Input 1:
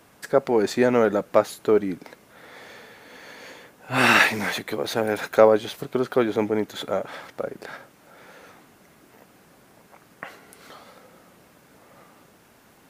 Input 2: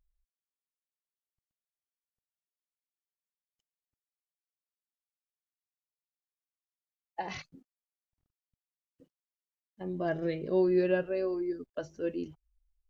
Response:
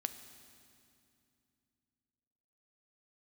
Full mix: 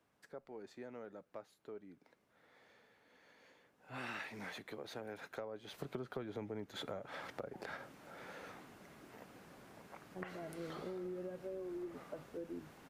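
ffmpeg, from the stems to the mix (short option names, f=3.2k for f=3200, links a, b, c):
-filter_complex "[0:a]highshelf=f=6.8k:g=-8.5,acompressor=threshold=-39dB:ratio=1.5,volume=-3.5dB,afade=t=in:st=3.65:d=0.54:silence=0.375837,afade=t=in:st=5.64:d=0.21:silence=0.316228,asplit=2[a][b];[1:a]lowpass=1k,alimiter=level_in=2dB:limit=-24dB:level=0:latency=1:release=321,volume=-2dB,adelay=350,volume=-6.5dB[c];[b]apad=whole_len=584041[d];[c][d]sidechaincompress=threshold=-44dB:ratio=8:attack=16:release=910[e];[a][e]amix=inputs=2:normalize=0,acrossover=split=130[f][g];[g]acompressor=threshold=-41dB:ratio=8[h];[f][h]amix=inputs=2:normalize=0"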